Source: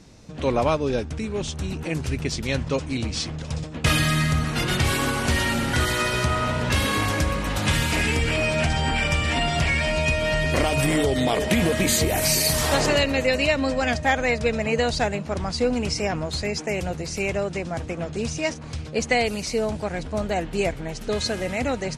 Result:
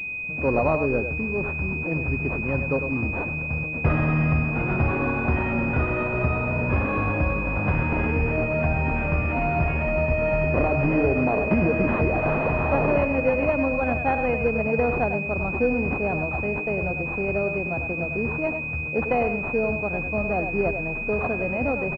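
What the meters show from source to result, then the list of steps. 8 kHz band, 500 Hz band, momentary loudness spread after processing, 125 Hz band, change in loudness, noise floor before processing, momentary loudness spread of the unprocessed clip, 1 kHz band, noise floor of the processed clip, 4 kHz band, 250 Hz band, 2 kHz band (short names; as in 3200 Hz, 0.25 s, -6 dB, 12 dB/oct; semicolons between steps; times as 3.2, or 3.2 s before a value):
under -35 dB, +0.5 dB, 5 LU, +0.5 dB, -0.5 dB, -35 dBFS, 8 LU, -0.5 dB, -30 dBFS, under -25 dB, +0.5 dB, 0.0 dB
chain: speakerphone echo 0.1 s, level -7 dB; pulse-width modulation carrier 2500 Hz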